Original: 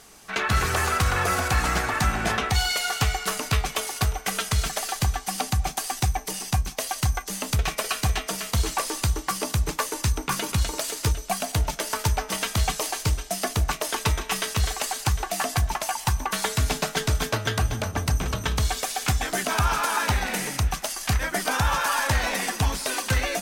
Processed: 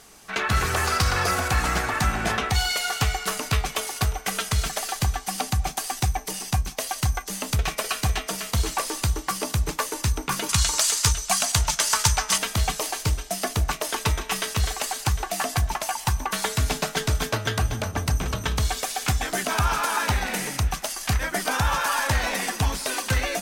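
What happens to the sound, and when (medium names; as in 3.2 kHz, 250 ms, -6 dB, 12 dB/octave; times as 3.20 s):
0.87–1.31 s: peaking EQ 4.9 kHz +9 dB 0.5 oct
10.49–12.38 s: FFT filter 160 Hz 0 dB, 310 Hz -8 dB, 530 Hz -5 dB, 1.1 kHz +6 dB, 2.3 kHz +5 dB, 7.2 kHz +12 dB, 14 kHz +2 dB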